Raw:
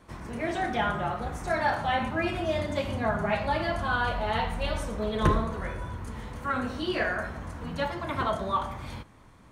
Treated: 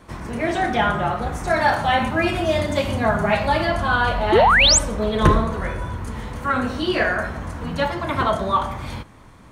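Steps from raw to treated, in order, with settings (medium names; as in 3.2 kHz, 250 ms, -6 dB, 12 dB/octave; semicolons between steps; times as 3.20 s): 1.56–3.65 s: treble shelf 5.6 kHz +5.5 dB; 4.32–4.79 s: painted sound rise 320–8400 Hz -22 dBFS; trim +8 dB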